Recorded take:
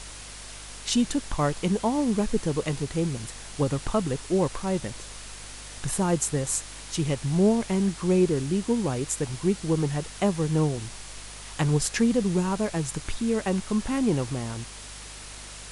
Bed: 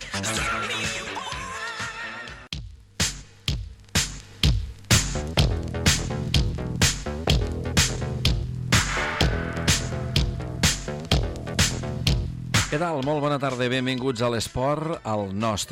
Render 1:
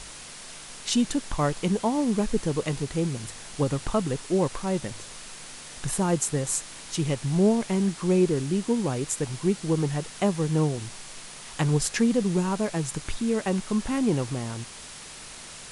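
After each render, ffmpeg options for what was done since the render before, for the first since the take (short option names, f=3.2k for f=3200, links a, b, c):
-af "bandreject=f=50:t=h:w=4,bandreject=f=100:t=h:w=4"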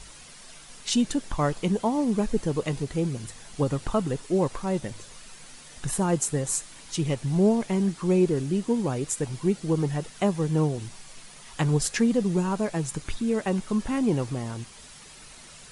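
-af "afftdn=nr=8:nf=-43"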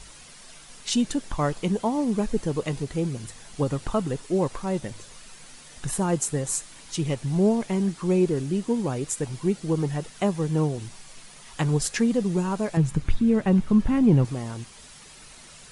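-filter_complex "[0:a]asettb=1/sr,asplit=3[a][b][c];[a]atrim=end=12.774[d];[b]atrim=start=12.77:end=14.25,asetpts=PTS-STARTPTS,afade=t=in:d=0.004:c=qsin,afade=t=out:st=1.476:d=0.004:c=qsin,bass=f=250:g=11,treble=f=4k:g=-8[e];[c]atrim=start=14.246[f];[d][e]acrossfade=d=0.004:c1=hsin:c2=qsin[g];[g][f]acrossfade=d=0.004:c1=qsin:c2=hsin"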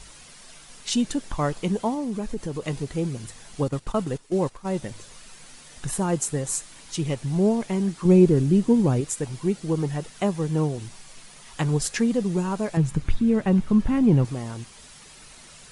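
-filter_complex "[0:a]asettb=1/sr,asplit=3[a][b][c];[a]atrim=end=1.944[d];[b]atrim=start=1.94:end=2.68,asetpts=PTS-STARTPTS,afade=t=in:d=0.004:c=qsin,afade=t=out:st=0.736:d=0.004:c=qsin,acompressor=threshold=-28dB:ratio=2:attack=3.2:release=140:knee=1:detection=peak[e];[c]atrim=start=2.676[f];[d][e]acrossfade=d=0.004:c1=hsin:c2=qsin[g];[g][f]acrossfade=d=0.004:c1=qsin:c2=hsin,asettb=1/sr,asplit=3[h][i][j];[h]atrim=end=3.684[k];[i]atrim=start=3.68:end=4.75,asetpts=PTS-STARTPTS,afade=t=in:d=0.004:c=qsin,afade=t=out:st=1.066:d=0.004:c=qsin,agate=range=-11dB:threshold=-31dB:ratio=16:release=100:detection=peak[l];[j]atrim=start=4.746[m];[k][l]acrossfade=d=0.004:c1=hsin:c2=qsin[n];[n][m]acrossfade=d=0.004:c1=qsin:c2=hsin,asettb=1/sr,asplit=3[o][p][q];[o]atrim=end=8.054[r];[p]atrim=start=8.05:end=9.01,asetpts=PTS-STARTPTS,afade=t=in:d=0.004:c=qsin,afade=t=out:st=0.956:d=0.004:c=qsin,lowshelf=f=360:g=10[s];[q]atrim=start=9.006[t];[r][s]acrossfade=d=0.004:c1=hsin:c2=qsin[u];[u][t]acrossfade=d=0.004:c1=qsin:c2=hsin"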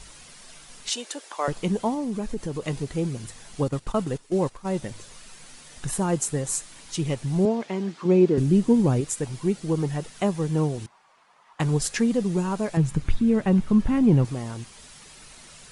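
-filter_complex "[0:a]asettb=1/sr,asplit=3[a][b][c];[a]atrim=end=0.894[d];[b]atrim=start=0.89:end=1.48,asetpts=PTS-STARTPTS,afade=t=in:d=0.004:c=qsin,afade=t=out:st=0.586:d=0.004:c=qsin,highpass=f=420:w=0.5412,highpass=f=420:w=1.3066[e];[c]atrim=start=1.476[f];[d][e]acrossfade=d=0.004:c1=hsin:c2=qsin[g];[g][f]acrossfade=d=0.004:c1=qsin:c2=hsin,asettb=1/sr,asplit=3[h][i][j];[h]atrim=end=7.454[k];[i]atrim=start=7.45:end=8.38,asetpts=PTS-STARTPTS,afade=t=in:d=0.004:c=qsin,afade=t=out:st=0.926:d=0.004:c=qsin,highpass=240,lowpass=4.9k[l];[j]atrim=start=8.376[m];[k][l]acrossfade=d=0.004:c1=hsin:c2=qsin[n];[n][m]acrossfade=d=0.004:c1=qsin:c2=hsin,asettb=1/sr,asplit=3[o][p][q];[o]atrim=end=10.864[r];[p]atrim=start=10.86:end=11.6,asetpts=PTS-STARTPTS,afade=t=in:d=0.004:c=qsin,afade=t=out:st=0.736:d=0.004:c=qsin,bandpass=f=990:t=q:w=2.1[s];[q]atrim=start=11.596[t];[r][s]acrossfade=d=0.004:c1=hsin:c2=qsin[u];[u][t]acrossfade=d=0.004:c1=qsin:c2=hsin"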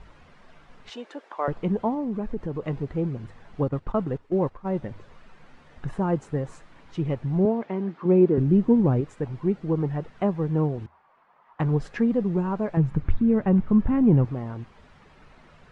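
-af "lowpass=1.6k,equalizer=f=82:w=7.7:g=6"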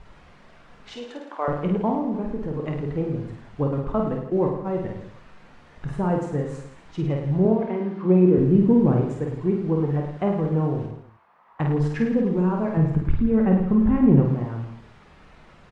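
-filter_complex "[0:a]asplit=2[a][b];[b]adelay=27,volume=-12dB[c];[a][c]amix=inputs=2:normalize=0,aecho=1:1:50|105|165.5|232|305.3:0.631|0.398|0.251|0.158|0.1"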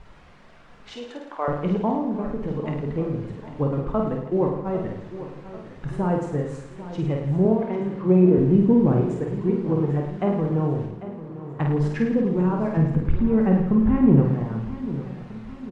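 -af "aecho=1:1:796|1592|2388|3184|3980:0.2|0.102|0.0519|0.0265|0.0135"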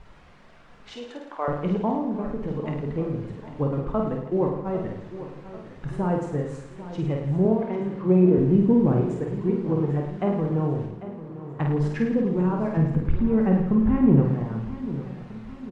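-af "volume=-1.5dB"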